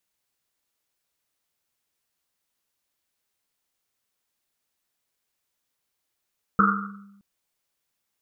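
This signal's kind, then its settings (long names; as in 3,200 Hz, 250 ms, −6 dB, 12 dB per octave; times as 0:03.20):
drum after Risset length 0.62 s, pitch 200 Hz, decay 1.11 s, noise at 1,300 Hz, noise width 270 Hz, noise 65%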